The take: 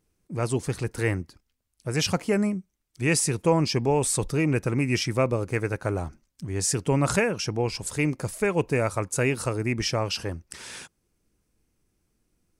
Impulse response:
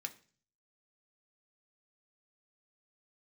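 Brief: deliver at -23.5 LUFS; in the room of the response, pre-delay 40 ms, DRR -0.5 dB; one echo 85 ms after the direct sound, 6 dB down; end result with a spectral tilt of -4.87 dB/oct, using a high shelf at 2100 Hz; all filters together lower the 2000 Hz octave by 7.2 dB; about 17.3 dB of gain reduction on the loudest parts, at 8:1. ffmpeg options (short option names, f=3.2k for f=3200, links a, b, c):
-filter_complex "[0:a]equalizer=f=2k:t=o:g=-6,highshelf=f=2.1k:g=-5,acompressor=threshold=-37dB:ratio=8,aecho=1:1:85:0.501,asplit=2[a][b];[1:a]atrim=start_sample=2205,adelay=40[c];[b][c]afir=irnorm=-1:irlink=0,volume=2.5dB[d];[a][d]amix=inputs=2:normalize=0,volume=15dB"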